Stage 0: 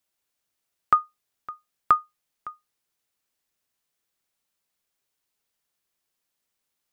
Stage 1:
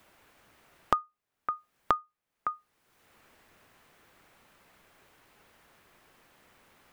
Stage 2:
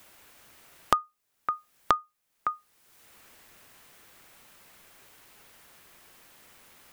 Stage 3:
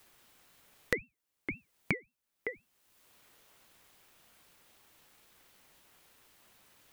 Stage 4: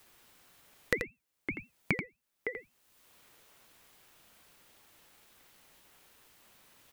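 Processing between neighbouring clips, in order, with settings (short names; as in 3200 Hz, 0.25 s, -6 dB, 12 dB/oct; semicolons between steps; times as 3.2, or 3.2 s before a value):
three-band squash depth 100%; gain -2.5 dB
high shelf 3500 Hz +11.5 dB; gain +1.5 dB
ring modulator with a swept carrier 1100 Hz, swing 35%, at 3.8 Hz; gain -5 dB
echo 84 ms -7.5 dB; gain +1 dB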